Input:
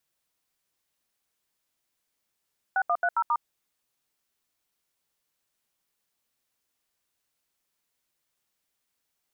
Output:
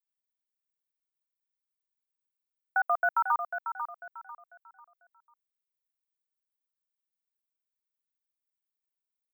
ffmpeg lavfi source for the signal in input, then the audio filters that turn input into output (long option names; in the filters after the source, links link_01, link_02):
-f lavfi -i "aevalsrc='0.0631*clip(min(mod(t,0.135),0.059-mod(t,0.135))/0.002,0,1)*(eq(floor(t/0.135),0)*(sin(2*PI*770*mod(t,0.135))+sin(2*PI*1477*mod(t,0.135)))+eq(floor(t/0.135),1)*(sin(2*PI*697*mod(t,0.135))+sin(2*PI*1209*mod(t,0.135)))+eq(floor(t/0.135),2)*(sin(2*PI*697*mod(t,0.135))+sin(2*PI*1477*mod(t,0.135)))+eq(floor(t/0.135),3)*(sin(2*PI*941*mod(t,0.135))+sin(2*PI*1336*mod(t,0.135)))+eq(floor(t/0.135),4)*(sin(2*PI*941*mod(t,0.135))+sin(2*PI*1209*mod(t,0.135))))':duration=0.675:sample_rate=44100"
-filter_complex "[0:a]aemphasis=mode=production:type=riaa,anlmdn=0.0158,asplit=2[link_01][link_02];[link_02]aecho=0:1:495|990|1485|1980:0.376|0.117|0.0361|0.0112[link_03];[link_01][link_03]amix=inputs=2:normalize=0"